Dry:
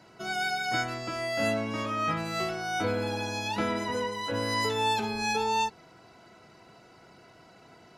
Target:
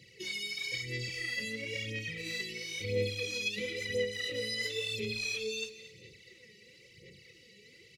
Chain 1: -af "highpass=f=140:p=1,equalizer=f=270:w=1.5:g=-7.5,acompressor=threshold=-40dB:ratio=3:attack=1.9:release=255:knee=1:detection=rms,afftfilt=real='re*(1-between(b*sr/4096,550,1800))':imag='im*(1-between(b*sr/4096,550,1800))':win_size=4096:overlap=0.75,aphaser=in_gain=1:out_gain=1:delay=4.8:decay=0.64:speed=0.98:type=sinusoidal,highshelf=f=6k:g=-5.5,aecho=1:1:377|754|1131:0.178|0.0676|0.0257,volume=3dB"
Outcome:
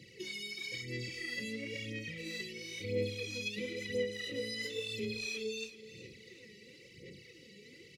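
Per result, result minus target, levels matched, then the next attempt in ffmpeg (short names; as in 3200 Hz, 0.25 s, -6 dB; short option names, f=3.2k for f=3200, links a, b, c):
echo 0.152 s late; 250 Hz band +6.0 dB; compressor: peak gain reduction +5 dB
-af "highpass=f=140:p=1,equalizer=f=270:w=1.5:g=-7.5,acompressor=threshold=-40dB:ratio=3:attack=1.9:release=255:knee=1:detection=rms,afftfilt=real='re*(1-between(b*sr/4096,550,1800))':imag='im*(1-between(b*sr/4096,550,1800))':win_size=4096:overlap=0.75,aphaser=in_gain=1:out_gain=1:delay=4.8:decay=0.64:speed=0.98:type=sinusoidal,highshelf=f=6k:g=-5.5,aecho=1:1:225|450|675:0.178|0.0676|0.0257,volume=3dB"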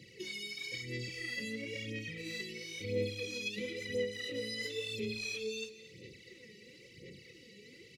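250 Hz band +5.5 dB; compressor: peak gain reduction +5 dB
-af "highpass=f=140:p=1,equalizer=f=270:w=1.5:g=-18,acompressor=threshold=-40dB:ratio=3:attack=1.9:release=255:knee=1:detection=rms,afftfilt=real='re*(1-between(b*sr/4096,550,1800))':imag='im*(1-between(b*sr/4096,550,1800))':win_size=4096:overlap=0.75,aphaser=in_gain=1:out_gain=1:delay=4.8:decay=0.64:speed=0.98:type=sinusoidal,highshelf=f=6k:g=-5.5,aecho=1:1:225|450|675:0.178|0.0676|0.0257,volume=3dB"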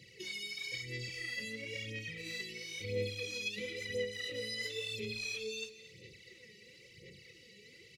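compressor: peak gain reduction +4.5 dB
-af "highpass=f=140:p=1,equalizer=f=270:w=1.5:g=-18,acompressor=threshold=-33.5dB:ratio=3:attack=1.9:release=255:knee=1:detection=rms,afftfilt=real='re*(1-between(b*sr/4096,550,1800))':imag='im*(1-between(b*sr/4096,550,1800))':win_size=4096:overlap=0.75,aphaser=in_gain=1:out_gain=1:delay=4.8:decay=0.64:speed=0.98:type=sinusoidal,highshelf=f=6k:g=-5.5,aecho=1:1:225|450|675:0.178|0.0676|0.0257,volume=3dB"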